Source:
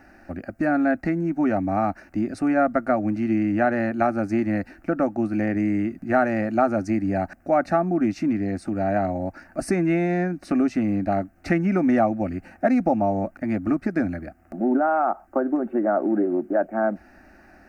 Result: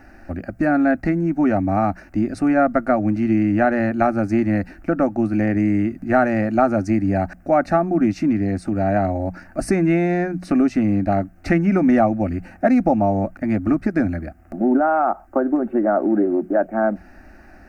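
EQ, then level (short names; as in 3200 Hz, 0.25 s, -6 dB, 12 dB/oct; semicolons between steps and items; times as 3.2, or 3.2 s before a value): low shelf 89 Hz +11 dB; notches 60/120/180 Hz; +3.0 dB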